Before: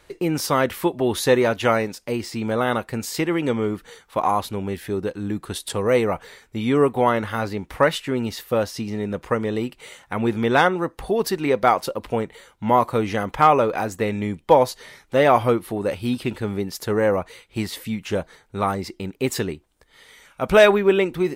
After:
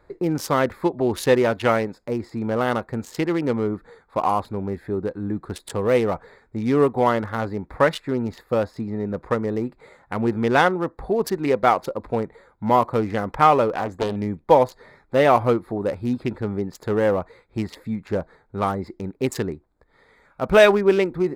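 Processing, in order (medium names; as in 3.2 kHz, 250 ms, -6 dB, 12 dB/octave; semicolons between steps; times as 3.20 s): local Wiener filter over 15 samples; 13.74–14.16 s: loudspeaker Doppler distortion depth 0.72 ms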